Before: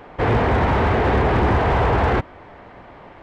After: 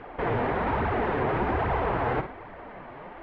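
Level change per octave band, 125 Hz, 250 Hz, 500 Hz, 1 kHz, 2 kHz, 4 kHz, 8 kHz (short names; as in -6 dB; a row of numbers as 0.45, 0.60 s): -12.0 dB, -8.5 dB, -7.5 dB, -7.0 dB, -8.0 dB, -12.0 dB, n/a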